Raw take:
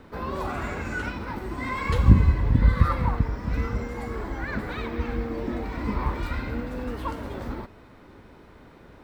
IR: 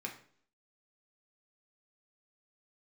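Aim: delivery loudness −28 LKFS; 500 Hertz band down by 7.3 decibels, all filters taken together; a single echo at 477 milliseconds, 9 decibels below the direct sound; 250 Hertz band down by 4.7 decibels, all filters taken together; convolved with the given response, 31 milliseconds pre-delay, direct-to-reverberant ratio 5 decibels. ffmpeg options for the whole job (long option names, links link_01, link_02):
-filter_complex "[0:a]equalizer=frequency=250:width_type=o:gain=-4.5,equalizer=frequency=500:width_type=o:gain=-7.5,aecho=1:1:477:0.355,asplit=2[link_01][link_02];[1:a]atrim=start_sample=2205,adelay=31[link_03];[link_02][link_03]afir=irnorm=-1:irlink=0,volume=-5.5dB[link_04];[link_01][link_04]amix=inputs=2:normalize=0,volume=-1dB"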